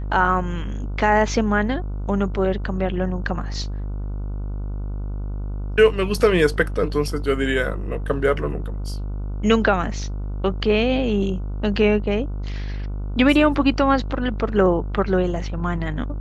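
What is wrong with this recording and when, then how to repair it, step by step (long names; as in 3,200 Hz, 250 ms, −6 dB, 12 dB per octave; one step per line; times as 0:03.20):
mains buzz 50 Hz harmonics 30 −27 dBFS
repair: hum removal 50 Hz, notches 30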